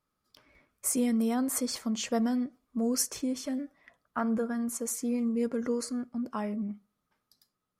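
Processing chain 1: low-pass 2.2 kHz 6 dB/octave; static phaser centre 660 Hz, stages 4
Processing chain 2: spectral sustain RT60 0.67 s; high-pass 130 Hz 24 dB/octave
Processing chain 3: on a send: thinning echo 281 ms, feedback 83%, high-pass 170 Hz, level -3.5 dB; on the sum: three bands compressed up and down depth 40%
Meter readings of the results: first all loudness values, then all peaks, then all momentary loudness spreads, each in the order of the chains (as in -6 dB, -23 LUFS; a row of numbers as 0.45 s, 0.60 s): -39.5 LUFS, -29.5 LUFS, -29.0 LUFS; -22.5 dBFS, -11.5 dBFS, -14.0 dBFS; 11 LU, 9 LU, 6 LU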